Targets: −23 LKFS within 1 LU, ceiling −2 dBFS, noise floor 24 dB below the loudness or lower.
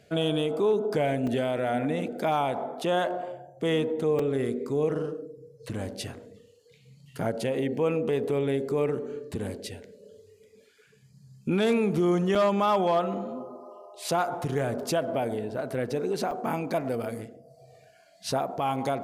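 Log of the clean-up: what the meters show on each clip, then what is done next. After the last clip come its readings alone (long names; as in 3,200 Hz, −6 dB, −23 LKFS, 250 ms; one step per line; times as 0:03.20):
number of dropouts 4; longest dropout 3.7 ms; integrated loudness −28.0 LKFS; sample peak −15.5 dBFS; target loudness −23.0 LKFS
→ repair the gap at 0:01.27/0:04.19/0:12.35/0:16.31, 3.7 ms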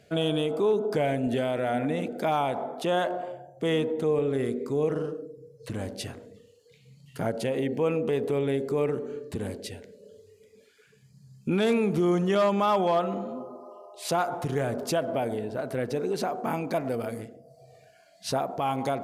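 number of dropouts 0; integrated loudness −28.0 LKFS; sample peak −15.5 dBFS; target loudness −23.0 LKFS
→ level +5 dB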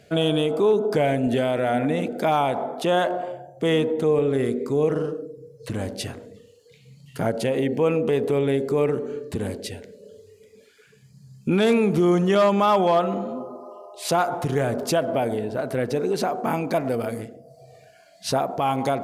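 integrated loudness −23.0 LKFS; sample peak −10.5 dBFS; background noise floor −53 dBFS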